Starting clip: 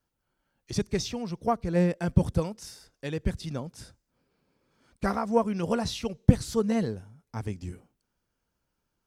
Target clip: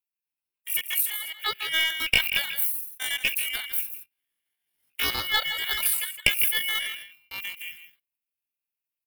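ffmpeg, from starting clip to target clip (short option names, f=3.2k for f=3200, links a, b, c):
-filter_complex "[0:a]equalizer=f=5.3k:t=o:w=0.25:g=-6,aeval=exprs='val(0)*sin(2*PI*1400*n/s)':c=same,acrossover=split=120|5300[a][b][c];[c]acontrast=58[d];[a][b][d]amix=inputs=3:normalize=0,agate=range=-16dB:threshold=-51dB:ratio=16:detection=peak,asplit=2[e][f];[f]aecho=0:1:158:0.299[g];[e][g]amix=inputs=2:normalize=0,dynaudnorm=f=550:g=7:m=11.5dB,asetrate=80880,aresample=44100,atempo=0.545254,aeval=exprs='(tanh(2.24*val(0)+0.45)-tanh(0.45))/2.24':c=same,aexciter=amount=7.1:drive=3.9:freq=9.2k"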